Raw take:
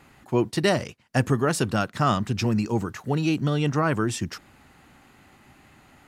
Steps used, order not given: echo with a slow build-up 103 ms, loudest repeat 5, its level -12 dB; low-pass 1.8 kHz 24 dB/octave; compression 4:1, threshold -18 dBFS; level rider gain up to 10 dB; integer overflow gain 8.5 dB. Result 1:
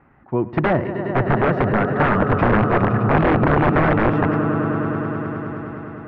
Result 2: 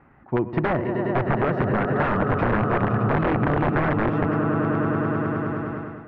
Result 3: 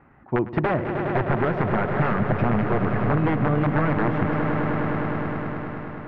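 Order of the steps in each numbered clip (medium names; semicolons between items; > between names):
compression > level rider > echo with a slow build-up > integer overflow > low-pass; echo with a slow build-up > level rider > integer overflow > compression > low-pass; level rider > integer overflow > echo with a slow build-up > compression > low-pass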